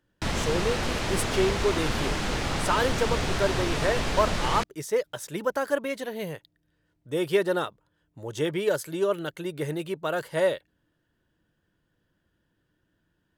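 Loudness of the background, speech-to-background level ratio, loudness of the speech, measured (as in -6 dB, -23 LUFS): -28.5 LUFS, -0.5 dB, -29.0 LUFS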